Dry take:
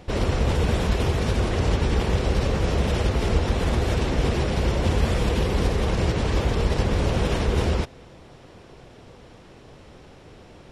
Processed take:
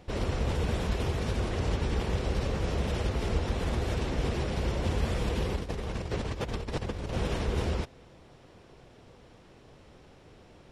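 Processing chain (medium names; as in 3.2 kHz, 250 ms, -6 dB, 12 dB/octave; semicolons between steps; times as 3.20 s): 5.56–7.13 s: compressor with a negative ratio -25 dBFS, ratio -0.5; trim -7.5 dB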